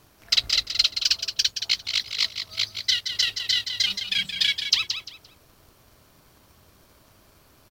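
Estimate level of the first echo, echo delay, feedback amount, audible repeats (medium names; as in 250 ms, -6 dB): -8.0 dB, 173 ms, 24%, 3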